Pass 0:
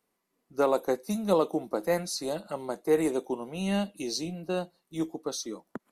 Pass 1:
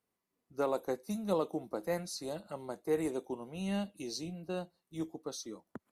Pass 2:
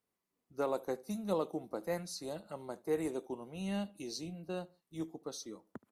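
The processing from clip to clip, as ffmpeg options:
ffmpeg -i in.wav -af "equalizer=frequency=91:width_type=o:width=1.1:gain=10,volume=-8dB" out.wav
ffmpeg -i in.wav -filter_complex "[0:a]asplit=2[link_01][link_02];[link_02]adelay=74,lowpass=frequency=1700:poles=1,volume=-21.5dB,asplit=2[link_03][link_04];[link_04]adelay=74,lowpass=frequency=1700:poles=1,volume=0.34[link_05];[link_01][link_03][link_05]amix=inputs=3:normalize=0,volume=-2dB" out.wav

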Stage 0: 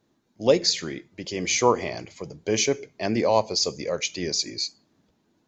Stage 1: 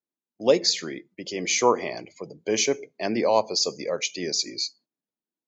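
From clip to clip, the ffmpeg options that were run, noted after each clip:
ffmpeg -i in.wav -af "agate=range=-11dB:threshold=-51dB:ratio=16:detection=peak,afftdn=noise_reduction=17:noise_floor=-46,highpass=200" out.wav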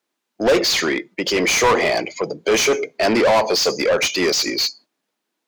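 ffmpeg -i in.wav -filter_complex "[0:a]asplit=2[link_01][link_02];[link_02]highpass=frequency=720:poles=1,volume=30dB,asoftclip=type=tanh:threshold=-6dB[link_03];[link_01][link_03]amix=inputs=2:normalize=0,lowpass=frequency=3400:poles=1,volume=-6dB,volume=-1.5dB" out.wav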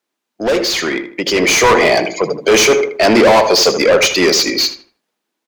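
ffmpeg -i in.wav -filter_complex "[0:a]dynaudnorm=framelen=360:gausssize=7:maxgain=12dB,asoftclip=type=hard:threshold=-6.5dB,asplit=2[link_01][link_02];[link_02]adelay=78,lowpass=frequency=2500:poles=1,volume=-9dB,asplit=2[link_03][link_04];[link_04]adelay=78,lowpass=frequency=2500:poles=1,volume=0.35,asplit=2[link_05][link_06];[link_06]adelay=78,lowpass=frequency=2500:poles=1,volume=0.35,asplit=2[link_07][link_08];[link_08]adelay=78,lowpass=frequency=2500:poles=1,volume=0.35[link_09];[link_01][link_03][link_05][link_07][link_09]amix=inputs=5:normalize=0" out.wav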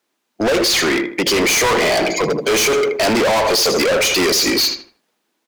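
ffmpeg -i in.wav -af "acompressor=threshold=-12dB:ratio=6,asoftclip=type=hard:threshold=-19.5dB,volume=5.5dB" out.wav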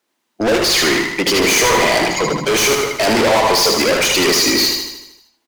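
ffmpeg -i in.wav -af "aecho=1:1:77|154|231|308|385|462|539|616:0.631|0.353|0.198|0.111|0.0621|0.0347|0.0195|0.0109" out.wav

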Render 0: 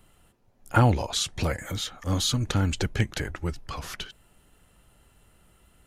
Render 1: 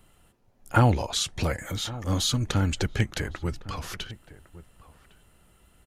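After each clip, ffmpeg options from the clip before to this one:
ffmpeg -i in.wav -filter_complex "[0:a]asplit=2[link_01][link_02];[link_02]adelay=1108,volume=-17dB,highshelf=frequency=4000:gain=-24.9[link_03];[link_01][link_03]amix=inputs=2:normalize=0" out.wav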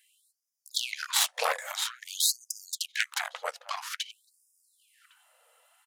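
ffmpeg -i in.wav -af "aeval=exprs='0.501*(cos(1*acos(clip(val(0)/0.501,-1,1)))-cos(1*PI/2))+0.158*(cos(8*acos(clip(val(0)/0.501,-1,1)))-cos(8*PI/2))':channel_layout=same,lowshelf=frequency=380:gain=7.5,afftfilt=real='re*gte(b*sr/1024,440*pow(4900/440,0.5+0.5*sin(2*PI*0.5*pts/sr)))':imag='im*gte(b*sr/1024,440*pow(4900/440,0.5+0.5*sin(2*PI*0.5*pts/sr)))':win_size=1024:overlap=0.75" out.wav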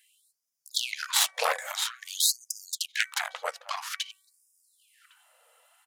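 ffmpeg -i in.wav -af "bandreject=frequency=381.2:width_type=h:width=4,bandreject=frequency=762.4:width_type=h:width=4,bandreject=frequency=1143.6:width_type=h:width=4,bandreject=frequency=1524.8:width_type=h:width=4,bandreject=frequency=1906:width_type=h:width=4,bandreject=frequency=2287.2:width_type=h:width=4,volume=1.5dB" out.wav

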